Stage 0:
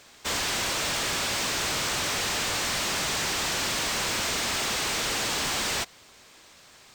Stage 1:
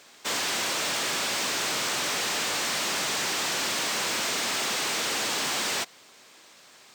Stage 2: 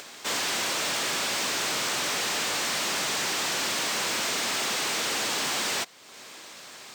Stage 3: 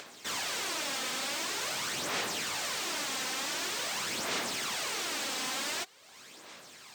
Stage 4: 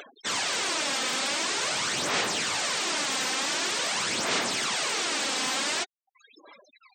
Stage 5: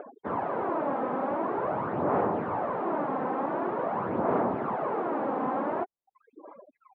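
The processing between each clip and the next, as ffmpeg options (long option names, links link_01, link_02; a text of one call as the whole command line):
ffmpeg -i in.wav -af "highpass=190" out.wav
ffmpeg -i in.wav -af "acompressor=mode=upward:threshold=-35dB:ratio=2.5" out.wav
ffmpeg -i in.wav -af "aphaser=in_gain=1:out_gain=1:delay=3.9:decay=0.47:speed=0.46:type=sinusoidal,volume=-7.5dB" out.wav
ffmpeg -i in.wav -af "afftfilt=real='re*gte(hypot(re,im),0.00794)':imag='im*gte(hypot(re,im),0.00794)':win_size=1024:overlap=0.75,volume=6.5dB" out.wav
ffmpeg -i in.wav -af "lowpass=frequency=1000:width=0.5412,lowpass=frequency=1000:width=1.3066,volume=7dB" out.wav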